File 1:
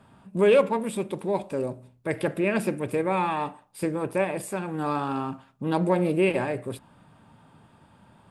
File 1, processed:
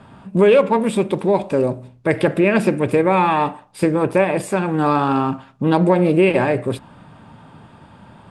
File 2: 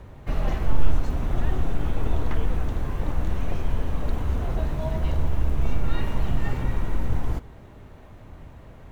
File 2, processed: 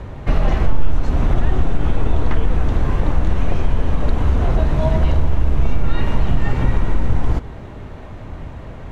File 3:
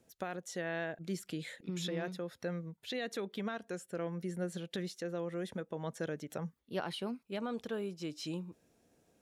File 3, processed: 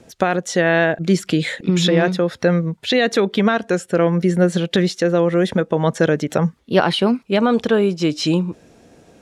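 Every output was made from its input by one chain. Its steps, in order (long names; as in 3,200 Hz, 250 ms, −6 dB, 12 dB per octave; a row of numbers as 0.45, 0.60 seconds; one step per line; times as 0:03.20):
downward compressor 2.5 to 1, threshold −23 dBFS
high-frequency loss of the air 54 metres
normalise the peak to −3 dBFS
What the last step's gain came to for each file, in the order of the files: +11.5, +12.0, +22.5 decibels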